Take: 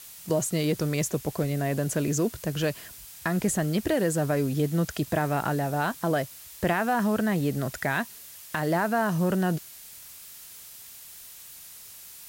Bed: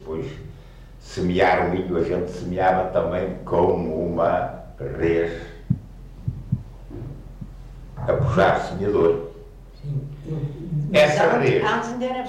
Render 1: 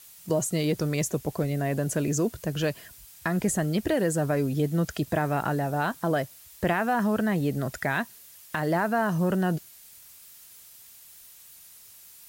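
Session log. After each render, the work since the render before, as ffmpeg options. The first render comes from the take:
ffmpeg -i in.wav -af "afftdn=noise_reduction=6:noise_floor=-46" out.wav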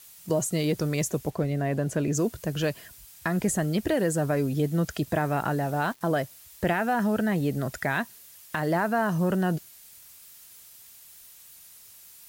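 ffmpeg -i in.wav -filter_complex "[0:a]asettb=1/sr,asplit=3[link_01][link_02][link_03];[link_01]atrim=end=1.304[link_04];[link_02]atrim=start=1.3:end=2.15,asetpts=PTS-STARTPTS,afade=type=in:duration=0.004:curve=qsin,afade=type=out:start_time=0.846:duration=0.004:curve=qsin,aemphasis=mode=reproduction:type=cd[link_05];[link_03]atrim=start=2.146[link_06];[link_04][link_05]acrossfade=duration=0.004:curve1=hsin:curve2=qsin[link_07];[link_07][link_06]acrossfade=duration=0.004:curve1=qsin:curve2=hsin,asettb=1/sr,asplit=3[link_08][link_09][link_10];[link_08]atrim=end=5.594[link_11];[link_09]atrim=start=5.59:end=6.01,asetpts=PTS-STARTPTS,afade=type=in:duration=0.004:curve=qsin,afade=type=out:start_time=0.416:duration=0.004:curve=qsin,aeval=exprs='val(0)*gte(abs(val(0)),0.0075)':channel_layout=same[link_12];[link_10]atrim=start=6.006[link_13];[link_11][link_12]acrossfade=duration=0.004:curve1=hsin:curve2=qsin[link_14];[link_14][link_13]acrossfade=duration=0.004:curve1=qsin:curve2=hsin,asettb=1/sr,asplit=3[link_15][link_16][link_17];[link_15]atrim=end=6.644[link_18];[link_16]atrim=start=6.64:end=7.32,asetpts=PTS-STARTPTS,afade=type=in:duration=0.004:curve=qsin,afade=type=out:start_time=0.676:duration=0.004:curve=qsin,bandreject=frequency=1100:width=6.3[link_19];[link_17]atrim=start=7.316[link_20];[link_18][link_19]acrossfade=duration=0.004:curve1=hsin:curve2=qsin[link_21];[link_21][link_20]acrossfade=duration=0.004:curve1=qsin:curve2=hsin" out.wav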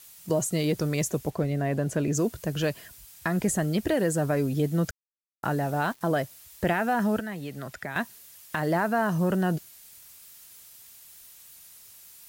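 ffmpeg -i in.wav -filter_complex "[0:a]asettb=1/sr,asplit=3[link_01][link_02][link_03];[link_01]atrim=end=7.194[link_04];[link_02]atrim=start=7.19:end=7.96,asetpts=PTS-STARTPTS,afade=type=in:duration=0.004:curve=qsin,afade=type=out:start_time=0.766:duration=0.004:curve=qsin,acrossover=split=95|890|4200[link_05][link_06][link_07][link_08];[link_05]acompressor=threshold=-60dB:ratio=3[link_09];[link_06]acompressor=threshold=-38dB:ratio=3[link_10];[link_07]acompressor=threshold=-39dB:ratio=3[link_11];[link_08]acompressor=threshold=-54dB:ratio=3[link_12];[link_09][link_10][link_11][link_12]amix=inputs=4:normalize=0[link_13];[link_03]atrim=start=7.956[link_14];[link_04][link_13]acrossfade=duration=0.004:curve1=hsin:curve2=qsin[link_15];[link_15][link_14]acrossfade=duration=0.004:curve1=qsin:curve2=hsin,asplit=3[link_16][link_17][link_18];[link_16]atrim=end=4.91,asetpts=PTS-STARTPTS,afade=type=out:start_time=4.906:duration=0.004:curve=hsin[link_19];[link_17]atrim=start=4.91:end=5.43,asetpts=PTS-STARTPTS,volume=0[link_20];[link_18]atrim=start=5.43,asetpts=PTS-STARTPTS,afade=type=in:duration=0.004:curve=hsin[link_21];[link_19][link_20][link_21]concat=n=3:v=0:a=1" out.wav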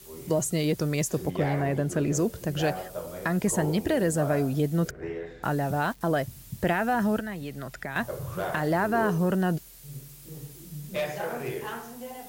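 ffmpeg -i in.wav -i bed.wav -filter_complex "[1:a]volume=-15dB[link_01];[0:a][link_01]amix=inputs=2:normalize=0" out.wav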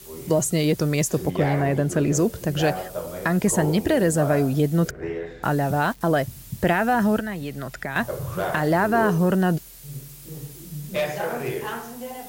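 ffmpeg -i in.wav -af "volume=5dB" out.wav

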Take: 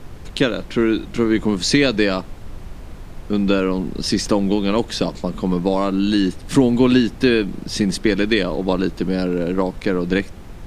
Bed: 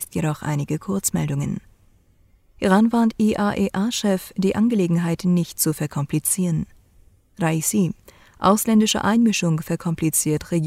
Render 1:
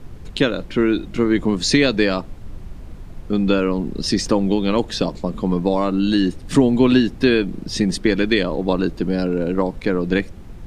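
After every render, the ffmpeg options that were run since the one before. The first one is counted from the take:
ffmpeg -i in.wav -af "afftdn=noise_reduction=6:noise_floor=-36" out.wav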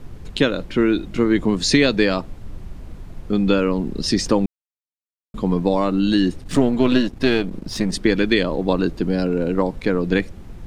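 ffmpeg -i in.wav -filter_complex "[0:a]asettb=1/sr,asplit=3[link_01][link_02][link_03];[link_01]atrim=end=6.434[link_04];[link_02]atrim=start=6.43:end=7.93,asetpts=PTS-STARTPTS,afade=type=in:duration=0.004:curve=qsin,afade=type=out:start_time=1.496:duration=0.004:curve=qsin,aeval=exprs='if(lt(val(0),0),0.447*val(0),val(0))':channel_layout=same[link_05];[link_03]atrim=start=7.926[link_06];[link_04][link_05]acrossfade=duration=0.004:curve1=hsin:curve2=qsin[link_07];[link_07][link_06]acrossfade=duration=0.004:curve1=qsin:curve2=hsin,asplit=3[link_08][link_09][link_10];[link_08]atrim=end=4.46,asetpts=PTS-STARTPTS,afade=type=out:start_time=4.456:duration=0.004:curve=hsin[link_11];[link_09]atrim=start=4.46:end=5.34,asetpts=PTS-STARTPTS,volume=0[link_12];[link_10]atrim=start=5.34,asetpts=PTS-STARTPTS,afade=type=in:duration=0.004:curve=hsin[link_13];[link_11][link_12][link_13]concat=n=3:v=0:a=1" out.wav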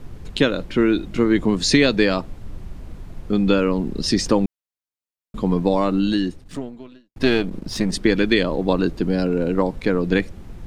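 ffmpeg -i in.wav -filter_complex "[0:a]asplit=2[link_01][link_02];[link_01]atrim=end=7.16,asetpts=PTS-STARTPTS,afade=type=out:start_time=5.96:duration=1.2:curve=qua[link_03];[link_02]atrim=start=7.16,asetpts=PTS-STARTPTS,afade=type=in:duration=0.004:curve=hsin[link_04];[link_03][link_04]concat=n=2:v=0:a=1" out.wav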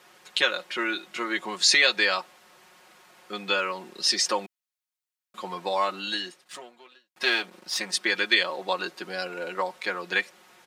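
ffmpeg -i in.wav -af "highpass=970,aecho=1:1:5.5:0.7" out.wav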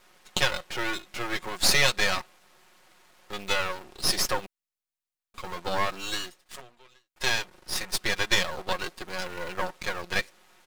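ffmpeg -i in.wav -filter_complex "[0:a]aeval=exprs='max(val(0),0)':channel_layout=same,asplit=2[link_01][link_02];[link_02]acrusher=bits=5:mix=0:aa=0.000001,volume=-10dB[link_03];[link_01][link_03]amix=inputs=2:normalize=0" out.wav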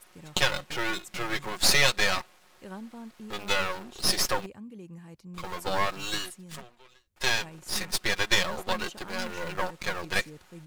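ffmpeg -i in.wav -i bed.wav -filter_complex "[1:a]volume=-25.5dB[link_01];[0:a][link_01]amix=inputs=2:normalize=0" out.wav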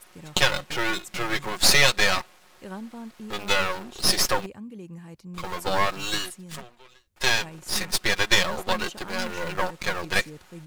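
ffmpeg -i in.wav -af "volume=4dB,alimiter=limit=-1dB:level=0:latency=1" out.wav

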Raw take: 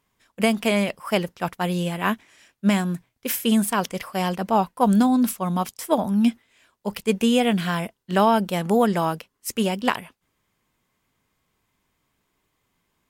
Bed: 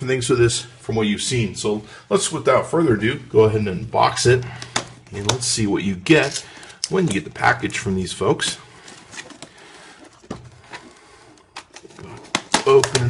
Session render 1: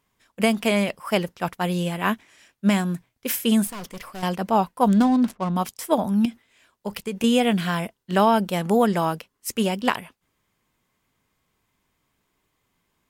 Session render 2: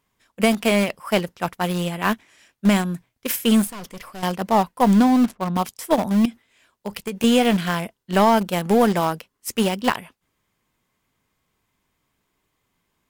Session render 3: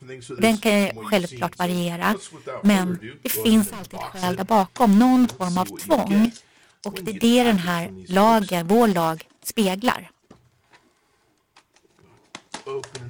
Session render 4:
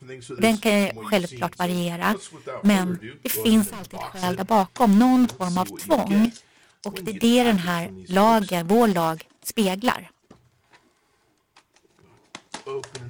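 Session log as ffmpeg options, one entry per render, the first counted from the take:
ffmpeg -i in.wav -filter_complex "[0:a]asettb=1/sr,asplit=3[link_01][link_02][link_03];[link_01]atrim=end=3.674[link_04];[link_02]atrim=start=3.67:end=4.23,asetpts=PTS-STARTPTS,afade=type=in:duration=0.004:curve=qsin,afade=type=out:start_time=0.556:duration=0.004:curve=qsin,aeval=exprs='(tanh(44.7*val(0)+0.45)-tanh(0.45))/44.7':channel_layout=same[link_05];[link_03]atrim=start=4.226[link_06];[link_04][link_05]acrossfade=duration=0.004:curve1=hsin:curve2=qsin[link_07];[link_07][link_06]acrossfade=duration=0.004:curve1=qsin:curve2=hsin,asettb=1/sr,asplit=3[link_08][link_09][link_10];[link_08]atrim=end=4.884[link_11];[link_09]atrim=start=4.88:end=5.56,asetpts=PTS-STARTPTS,afade=type=in:duration=0.004:curve=qsin,afade=type=out:start_time=0.676:duration=0.004:curve=qsin,adynamicsmooth=sensitivity=6.5:basefreq=670[link_12];[link_10]atrim=start=5.556[link_13];[link_11][link_12]acrossfade=duration=0.004:curve1=hsin:curve2=qsin[link_14];[link_14][link_13]acrossfade=duration=0.004:curve1=qsin:curve2=hsin,asettb=1/sr,asplit=3[link_15][link_16][link_17];[link_15]atrim=end=6.254[link_18];[link_16]atrim=start=6.25:end=7.24,asetpts=PTS-STARTPTS,afade=type=in:duration=0.004:curve=qsin,afade=type=out:start_time=0.986:duration=0.004:curve=qsin,acompressor=threshold=-23dB:ratio=10:attack=3.2:release=140:knee=1:detection=peak[link_19];[link_17]atrim=start=7.236[link_20];[link_18][link_19]acrossfade=duration=0.004:curve1=hsin:curve2=qsin[link_21];[link_21][link_20]acrossfade=duration=0.004:curve1=qsin:curve2=hsin" out.wav
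ffmpeg -i in.wav -filter_complex "[0:a]asplit=2[link_01][link_02];[link_02]aeval=exprs='val(0)*gte(abs(val(0)),0.106)':channel_layout=same,volume=-5dB[link_03];[link_01][link_03]amix=inputs=2:normalize=0,aeval=exprs='(tanh(2*val(0)+0.15)-tanh(0.15))/2':channel_layout=same" out.wav
ffmpeg -i in.wav -i bed.wav -filter_complex "[1:a]volume=-17.5dB[link_01];[0:a][link_01]amix=inputs=2:normalize=0" out.wav
ffmpeg -i in.wav -af "volume=-1dB" out.wav

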